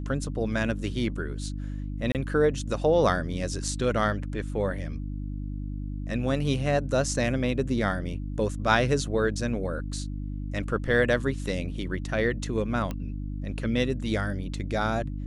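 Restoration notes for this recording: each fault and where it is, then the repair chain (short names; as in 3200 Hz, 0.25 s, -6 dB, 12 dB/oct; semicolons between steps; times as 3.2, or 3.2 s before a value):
hum 50 Hz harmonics 6 -33 dBFS
2.12–2.15 gap 28 ms
12.91 pop -19 dBFS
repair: de-click; de-hum 50 Hz, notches 6; interpolate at 2.12, 28 ms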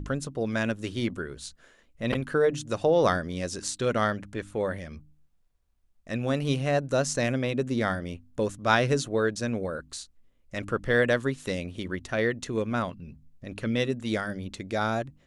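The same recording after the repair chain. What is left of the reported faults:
none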